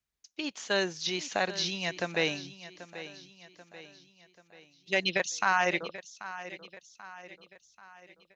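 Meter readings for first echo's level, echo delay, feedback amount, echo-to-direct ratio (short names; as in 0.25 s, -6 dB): -14.5 dB, 0.786 s, 48%, -13.5 dB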